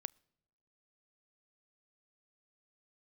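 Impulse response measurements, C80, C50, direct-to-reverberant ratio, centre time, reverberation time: 31.0 dB, 29.5 dB, 23.0 dB, 1 ms, not exponential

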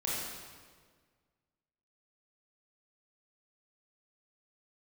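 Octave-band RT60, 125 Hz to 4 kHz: 1.9, 1.8, 1.8, 1.5, 1.4, 1.3 s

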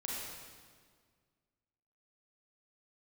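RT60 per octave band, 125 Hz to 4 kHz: 2.2, 2.1, 1.9, 1.7, 1.5, 1.5 s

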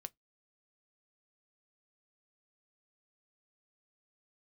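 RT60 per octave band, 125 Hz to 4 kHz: 0.20, 0.20, 0.15, 0.15, 0.10, 0.10 s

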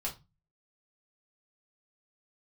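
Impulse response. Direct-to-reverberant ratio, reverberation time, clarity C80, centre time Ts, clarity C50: -4.0 dB, 0.25 s, 21.0 dB, 16 ms, 12.5 dB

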